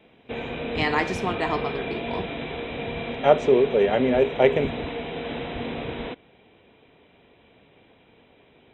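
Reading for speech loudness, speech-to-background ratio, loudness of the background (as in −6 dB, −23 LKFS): −22.5 LKFS, 9.0 dB, −31.5 LKFS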